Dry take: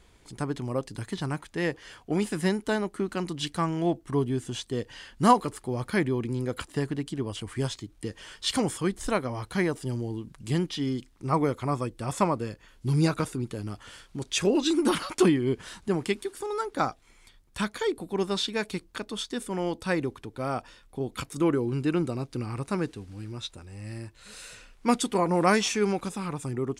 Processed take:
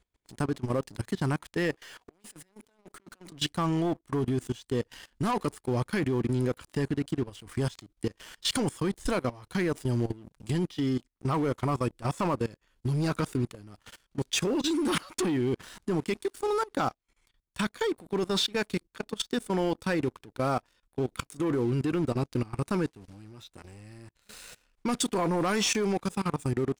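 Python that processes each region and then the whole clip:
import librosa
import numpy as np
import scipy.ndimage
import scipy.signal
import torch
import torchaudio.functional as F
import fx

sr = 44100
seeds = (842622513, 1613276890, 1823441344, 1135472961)

y = fx.chain(x, sr, fx.highpass(hz=350.0, slope=6),
    fx.over_compress(threshold_db=-42.0, ratio=-1.0),
    fx.tube_stage(drive_db=41.0, bias=0.2), at=(1.74, 3.32))
y = fx.leveller(y, sr, passes=3)
y = fx.level_steps(y, sr, step_db=21)
y = y * librosa.db_to_amplitude(-5.5)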